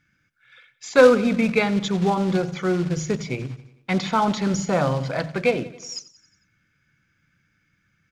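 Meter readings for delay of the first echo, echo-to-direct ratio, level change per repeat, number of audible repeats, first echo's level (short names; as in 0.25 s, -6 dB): 90 ms, -16.0 dB, -4.5 dB, 4, -18.0 dB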